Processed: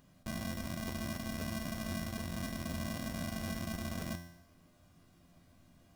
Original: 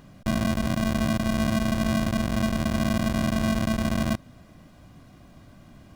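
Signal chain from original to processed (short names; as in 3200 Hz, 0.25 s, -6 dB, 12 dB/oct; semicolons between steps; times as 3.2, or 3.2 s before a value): high shelf 5000 Hz +9 dB; resonator 86 Hz, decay 0.77 s, harmonics all, mix 80%; crackling interface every 0.26 s, samples 512, repeat, from 0.61; gain -4 dB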